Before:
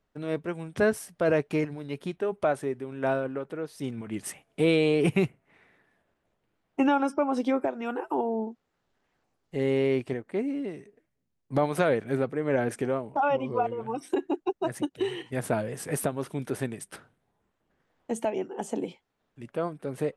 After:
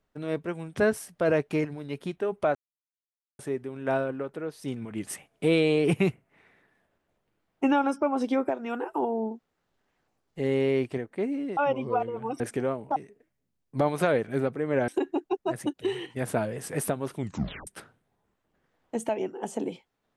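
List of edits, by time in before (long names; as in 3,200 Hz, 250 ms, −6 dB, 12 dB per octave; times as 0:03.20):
0:02.55: splice in silence 0.84 s
0:10.73–0:12.65: swap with 0:13.21–0:14.04
0:16.34: tape stop 0.49 s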